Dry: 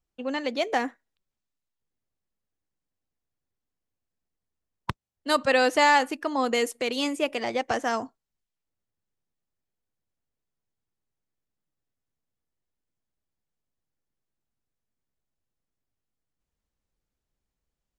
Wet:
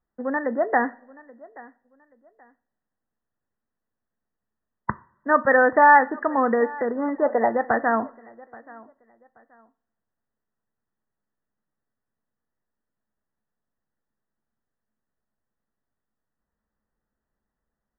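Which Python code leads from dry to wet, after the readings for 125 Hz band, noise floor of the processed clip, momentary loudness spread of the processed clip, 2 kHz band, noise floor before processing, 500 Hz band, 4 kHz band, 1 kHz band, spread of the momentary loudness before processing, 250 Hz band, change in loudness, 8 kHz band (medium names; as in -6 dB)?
+1.0 dB, -84 dBFS, 18 LU, +5.0 dB, under -85 dBFS, +4.5 dB, under -40 dB, +6.5 dB, 18 LU, +4.0 dB, +4.5 dB, under -35 dB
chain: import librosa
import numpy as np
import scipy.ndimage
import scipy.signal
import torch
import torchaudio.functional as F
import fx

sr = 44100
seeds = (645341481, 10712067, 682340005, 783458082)

y = fx.brickwall_lowpass(x, sr, high_hz=2000.0)
y = fx.low_shelf(y, sr, hz=400.0, db=-8.0)
y = fx.echo_feedback(y, sr, ms=829, feedback_pct=26, wet_db=-22.0)
y = fx.rev_double_slope(y, sr, seeds[0], early_s=0.37, late_s=1.6, knee_db=-22, drr_db=14.5)
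y = fx.spec_box(y, sr, start_s=7.25, length_s=0.23, low_hz=420.0, high_hz=1000.0, gain_db=7)
y = fx.peak_eq(y, sr, hz=220.0, db=9.0, octaves=0.24)
y = F.gain(torch.from_numpy(y), 7.0).numpy()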